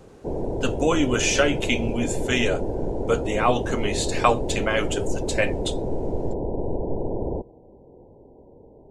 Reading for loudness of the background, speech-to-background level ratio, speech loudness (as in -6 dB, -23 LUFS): -29.0 LUFS, 4.5 dB, -24.5 LUFS